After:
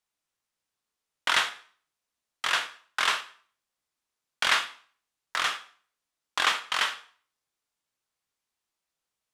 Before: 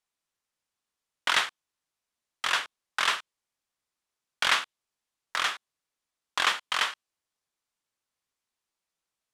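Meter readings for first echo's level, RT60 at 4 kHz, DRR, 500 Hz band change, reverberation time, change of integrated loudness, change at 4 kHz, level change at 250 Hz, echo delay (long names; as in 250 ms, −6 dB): no echo audible, 0.45 s, 8.0 dB, +1.0 dB, 0.45 s, +0.5 dB, +0.5 dB, +0.5 dB, no echo audible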